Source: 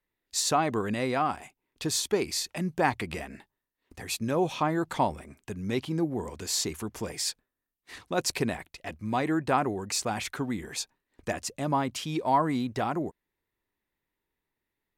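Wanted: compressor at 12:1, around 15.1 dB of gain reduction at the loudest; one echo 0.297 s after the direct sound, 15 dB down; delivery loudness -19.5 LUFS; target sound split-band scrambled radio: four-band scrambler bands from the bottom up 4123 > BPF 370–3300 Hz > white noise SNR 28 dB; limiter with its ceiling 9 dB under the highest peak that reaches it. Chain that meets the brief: compressor 12:1, threshold -35 dBFS; limiter -32 dBFS; echo 0.297 s -15 dB; four-band scrambler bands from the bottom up 4123; BPF 370–3300 Hz; white noise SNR 28 dB; gain +22 dB

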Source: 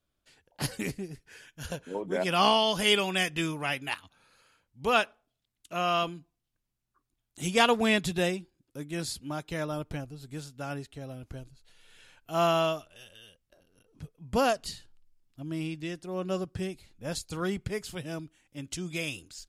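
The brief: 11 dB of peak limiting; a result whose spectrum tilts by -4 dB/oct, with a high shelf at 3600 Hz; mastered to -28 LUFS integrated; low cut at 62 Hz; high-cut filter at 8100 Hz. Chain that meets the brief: HPF 62 Hz; LPF 8100 Hz; high shelf 3600 Hz -5 dB; gain +7 dB; limiter -15 dBFS

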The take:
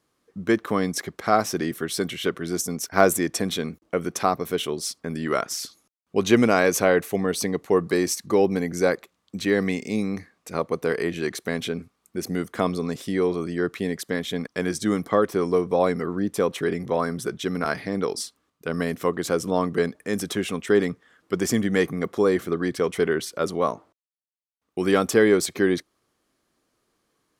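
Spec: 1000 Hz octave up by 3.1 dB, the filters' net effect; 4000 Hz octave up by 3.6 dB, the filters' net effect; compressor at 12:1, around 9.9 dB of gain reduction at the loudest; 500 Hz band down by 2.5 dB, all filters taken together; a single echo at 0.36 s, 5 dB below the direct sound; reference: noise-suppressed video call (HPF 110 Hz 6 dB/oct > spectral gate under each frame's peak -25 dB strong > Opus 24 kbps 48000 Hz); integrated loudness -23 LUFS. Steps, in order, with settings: bell 500 Hz -4 dB; bell 1000 Hz +5.5 dB; bell 4000 Hz +4.5 dB; compressor 12:1, threshold -21 dBFS; HPF 110 Hz 6 dB/oct; echo 0.36 s -5 dB; spectral gate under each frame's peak -25 dB strong; gain +5.5 dB; Opus 24 kbps 48000 Hz

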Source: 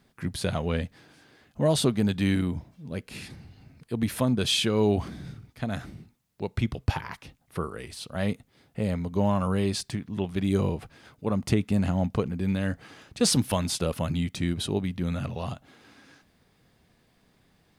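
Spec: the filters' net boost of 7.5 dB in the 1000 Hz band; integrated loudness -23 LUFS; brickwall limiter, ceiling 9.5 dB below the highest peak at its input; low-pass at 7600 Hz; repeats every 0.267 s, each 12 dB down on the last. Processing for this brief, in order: LPF 7600 Hz; bell 1000 Hz +9 dB; limiter -17 dBFS; feedback echo 0.267 s, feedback 25%, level -12 dB; gain +6.5 dB

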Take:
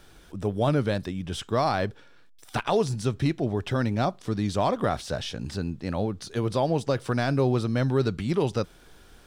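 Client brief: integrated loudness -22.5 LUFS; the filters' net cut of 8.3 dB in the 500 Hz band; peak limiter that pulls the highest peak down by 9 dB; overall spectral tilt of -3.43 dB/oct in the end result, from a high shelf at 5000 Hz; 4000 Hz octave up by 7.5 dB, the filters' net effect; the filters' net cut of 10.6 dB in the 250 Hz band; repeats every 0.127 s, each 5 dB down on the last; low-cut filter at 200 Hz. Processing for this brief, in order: HPF 200 Hz; bell 250 Hz -9 dB; bell 500 Hz -8 dB; bell 4000 Hz +8 dB; high shelf 5000 Hz +3 dB; limiter -20 dBFS; feedback echo 0.127 s, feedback 56%, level -5 dB; gain +9.5 dB

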